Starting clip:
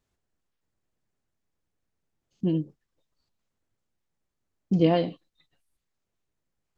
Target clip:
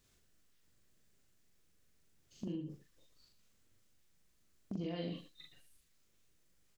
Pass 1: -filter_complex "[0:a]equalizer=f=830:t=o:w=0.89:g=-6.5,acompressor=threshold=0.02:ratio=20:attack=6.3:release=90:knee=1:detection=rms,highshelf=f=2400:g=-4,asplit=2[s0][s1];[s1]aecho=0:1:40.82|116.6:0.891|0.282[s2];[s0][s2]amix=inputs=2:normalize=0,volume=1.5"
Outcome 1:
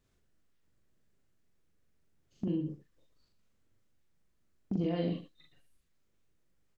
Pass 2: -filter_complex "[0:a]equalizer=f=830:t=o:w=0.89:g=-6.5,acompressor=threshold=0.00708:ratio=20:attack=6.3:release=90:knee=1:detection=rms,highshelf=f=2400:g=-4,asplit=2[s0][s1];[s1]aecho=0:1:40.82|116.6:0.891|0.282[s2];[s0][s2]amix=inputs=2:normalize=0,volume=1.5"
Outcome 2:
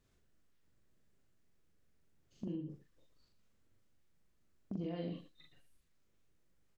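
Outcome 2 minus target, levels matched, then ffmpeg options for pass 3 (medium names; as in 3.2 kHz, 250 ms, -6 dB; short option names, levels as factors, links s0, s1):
4 kHz band -7.0 dB
-filter_complex "[0:a]equalizer=f=830:t=o:w=0.89:g=-6.5,acompressor=threshold=0.00708:ratio=20:attack=6.3:release=90:knee=1:detection=rms,highshelf=f=2400:g=7,asplit=2[s0][s1];[s1]aecho=0:1:40.82|116.6:0.891|0.282[s2];[s0][s2]amix=inputs=2:normalize=0,volume=1.5"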